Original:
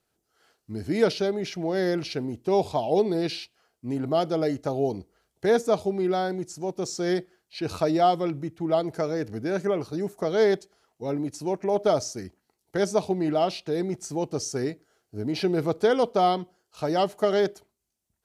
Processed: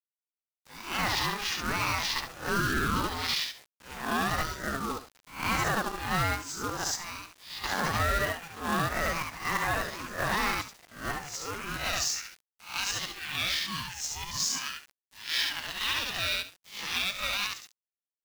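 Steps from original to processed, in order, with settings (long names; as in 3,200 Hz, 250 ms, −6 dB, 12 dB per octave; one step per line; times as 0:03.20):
peak hold with a rise ahead of every peak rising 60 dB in 0.37 s
Chebyshev band-pass filter 280–7,000 Hz, order 4
repeating echo 70 ms, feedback 21%, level −3.5 dB
downward expander −52 dBFS
high-pass filter sweep 1,100 Hz → 2,400 Hz, 0:11.11–0:12.23
brickwall limiter −21.5 dBFS, peak gain reduction 10.5 dB
0:04.43–0:04.91: phaser with its sweep stopped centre 480 Hz, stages 6
0:06.95–0:07.64: downward compressor 3 to 1, threshold −43 dBFS, peak gain reduction 10 dB
0:13.54–0:14.58: low shelf with overshoot 610 Hz +8.5 dB, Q 3
log-companded quantiser 4 bits
ring modulator whose carrier an LFO sweeps 540 Hz, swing 25%, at 1.1 Hz
level +5.5 dB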